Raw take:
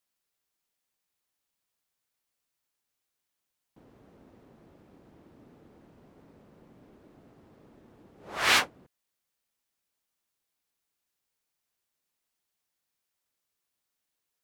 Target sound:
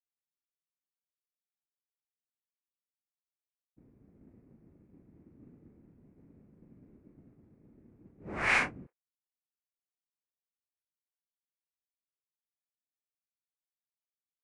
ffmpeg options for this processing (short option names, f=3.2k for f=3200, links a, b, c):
-filter_complex "[0:a]agate=range=-33dB:threshold=-47dB:ratio=3:detection=peak,highshelf=f=2.8k:t=q:w=3:g=-6.5,acrossover=split=360[a][b];[a]aeval=exprs='0.0335*sin(PI/2*6.31*val(0)/0.0335)':c=same[c];[b]aecho=1:1:37|63:0.708|0.2[d];[c][d]amix=inputs=2:normalize=0,aresample=22050,aresample=44100,volume=-7.5dB"